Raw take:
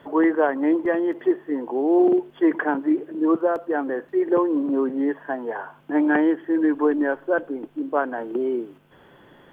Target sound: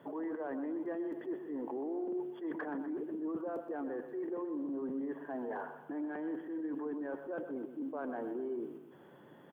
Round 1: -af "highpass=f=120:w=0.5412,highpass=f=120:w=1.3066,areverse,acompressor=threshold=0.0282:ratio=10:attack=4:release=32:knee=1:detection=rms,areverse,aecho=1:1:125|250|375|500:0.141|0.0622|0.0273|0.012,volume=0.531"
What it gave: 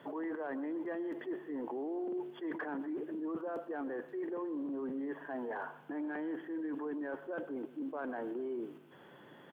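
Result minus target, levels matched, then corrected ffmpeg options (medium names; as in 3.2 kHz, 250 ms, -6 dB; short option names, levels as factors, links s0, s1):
4 kHz band +7.5 dB; echo-to-direct -7 dB
-af "highpass=f=120:w=0.5412,highpass=f=120:w=1.3066,equalizer=f=2900:t=o:w=2.5:g=-8,areverse,acompressor=threshold=0.0282:ratio=10:attack=4:release=32:knee=1:detection=rms,areverse,aecho=1:1:125|250|375|500|625:0.316|0.139|0.0612|0.0269|0.0119,volume=0.531"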